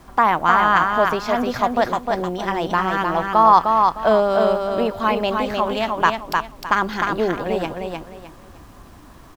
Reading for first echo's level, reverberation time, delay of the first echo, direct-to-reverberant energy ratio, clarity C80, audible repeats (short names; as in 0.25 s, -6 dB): -4.0 dB, none, 0.306 s, none, none, 3